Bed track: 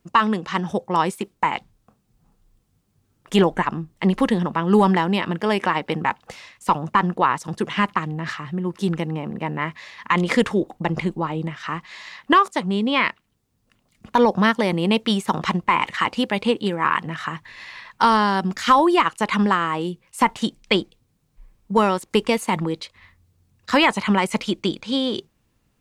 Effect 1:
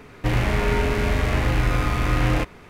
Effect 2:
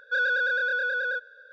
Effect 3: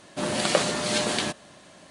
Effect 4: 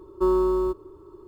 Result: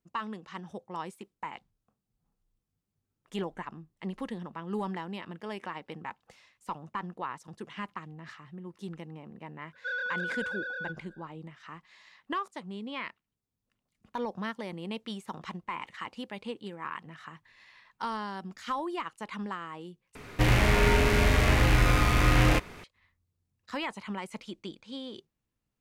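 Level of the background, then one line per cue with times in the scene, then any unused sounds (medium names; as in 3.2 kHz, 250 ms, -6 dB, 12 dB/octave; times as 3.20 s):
bed track -18 dB
9.73 s: add 2 -9 dB
20.15 s: replace with 1 -2 dB + treble shelf 2.1 kHz +5.5 dB
not used: 3, 4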